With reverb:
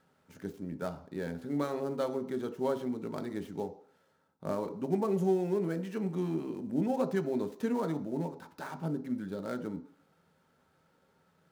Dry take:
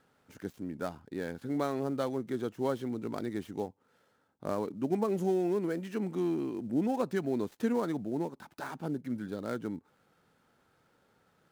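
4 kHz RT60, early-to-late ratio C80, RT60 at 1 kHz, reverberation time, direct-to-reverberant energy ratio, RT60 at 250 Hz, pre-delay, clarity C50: 0.60 s, 17.0 dB, 0.55 s, 0.55 s, 7.0 dB, 0.50 s, 3 ms, 14.0 dB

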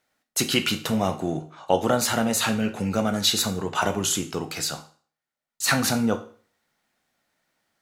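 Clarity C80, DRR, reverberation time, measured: 17.5 dB, 6.5 dB, 0.45 s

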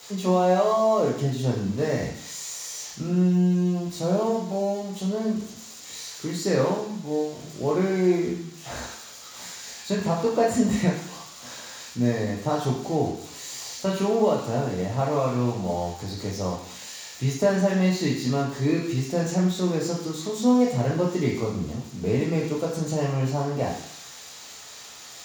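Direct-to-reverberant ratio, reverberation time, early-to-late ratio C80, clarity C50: −3.5 dB, 0.70 s, 7.0 dB, 4.0 dB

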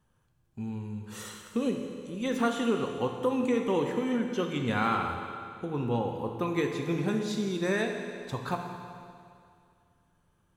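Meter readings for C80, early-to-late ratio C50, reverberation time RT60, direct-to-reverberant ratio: 5.5 dB, 4.5 dB, 2.3 s, 3.0 dB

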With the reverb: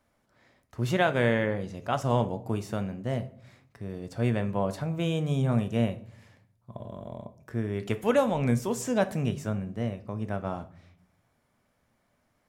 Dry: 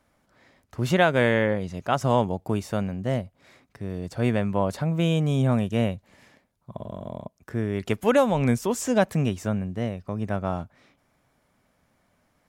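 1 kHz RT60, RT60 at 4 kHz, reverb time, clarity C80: 0.50 s, 0.40 s, 0.55 s, 20.0 dB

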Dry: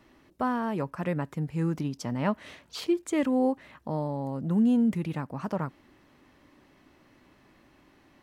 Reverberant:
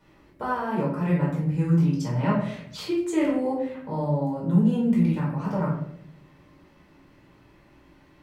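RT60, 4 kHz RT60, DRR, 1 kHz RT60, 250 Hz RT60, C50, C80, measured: 0.70 s, 0.45 s, −6.0 dB, 0.60 s, 1.0 s, 3.5 dB, 7.0 dB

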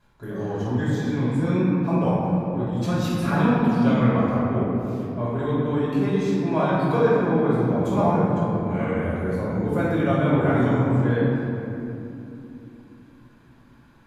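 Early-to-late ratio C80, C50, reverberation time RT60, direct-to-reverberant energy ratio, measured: −1.0 dB, −3.0 dB, 2.9 s, −9.5 dB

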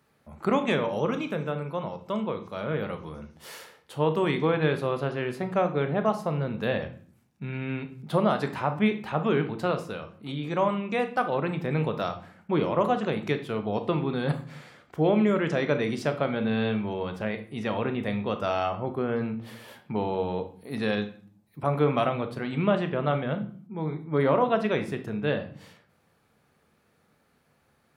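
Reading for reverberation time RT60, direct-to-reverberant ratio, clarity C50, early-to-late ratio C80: 0.50 s, 7.5 dB, 12.0 dB, 17.0 dB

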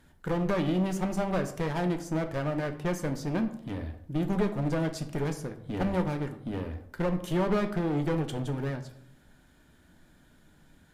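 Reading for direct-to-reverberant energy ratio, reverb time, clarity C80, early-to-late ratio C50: 6.5 dB, 0.70 s, 15.0 dB, 12.0 dB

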